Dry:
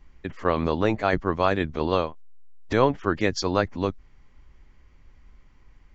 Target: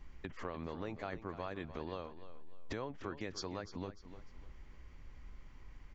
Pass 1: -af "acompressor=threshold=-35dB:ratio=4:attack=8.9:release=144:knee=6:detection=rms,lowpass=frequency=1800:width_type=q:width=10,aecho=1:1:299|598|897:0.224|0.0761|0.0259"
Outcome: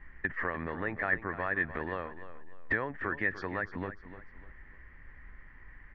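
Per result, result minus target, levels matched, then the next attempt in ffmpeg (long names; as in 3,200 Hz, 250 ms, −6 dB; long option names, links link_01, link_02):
2,000 Hz band +9.5 dB; downward compressor: peak gain reduction −5 dB
-af "acompressor=threshold=-35dB:ratio=4:attack=8.9:release=144:knee=6:detection=rms,aecho=1:1:299|598|897:0.224|0.0761|0.0259"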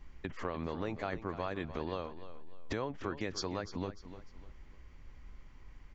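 downward compressor: peak gain reduction −5 dB
-af "acompressor=threshold=-41.5dB:ratio=4:attack=8.9:release=144:knee=6:detection=rms,aecho=1:1:299|598|897:0.224|0.0761|0.0259"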